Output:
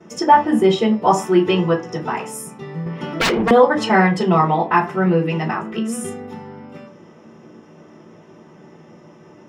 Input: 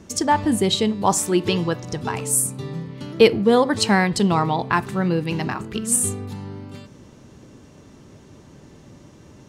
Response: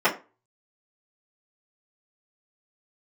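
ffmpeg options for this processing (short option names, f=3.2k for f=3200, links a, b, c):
-filter_complex "[1:a]atrim=start_sample=2205[a];[0:a][a]afir=irnorm=-1:irlink=0,asettb=1/sr,asplit=3[b][c][d];[b]atrim=end=2.864[e];[c]atrim=start=2.86:end=3.51,asetpts=PTS-STARTPTS,afade=t=in:d=0.004:c=qsin,afade=t=out:st=0.646:d=0.004:c=qsin,acontrast=88[f];[d]atrim=start=3.506[g];[e][f]acrossfade=d=0.004:c1=hsin:c2=qsin[h];[h][g]acrossfade=d=0.004:c1=qsin:c2=hsin,volume=-13.5dB"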